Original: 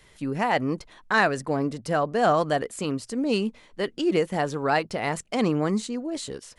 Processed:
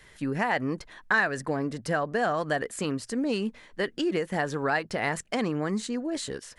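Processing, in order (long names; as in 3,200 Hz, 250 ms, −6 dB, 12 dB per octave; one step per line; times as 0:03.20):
downward compressor, threshold −24 dBFS, peak gain reduction 8.5 dB
parametric band 1,700 Hz +8 dB 0.42 octaves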